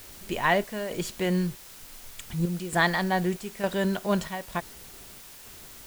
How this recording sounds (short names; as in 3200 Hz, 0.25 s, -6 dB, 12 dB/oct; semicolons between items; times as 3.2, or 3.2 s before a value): chopped level 1.1 Hz, depth 65%, duty 70%; a quantiser's noise floor 8-bit, dither triangular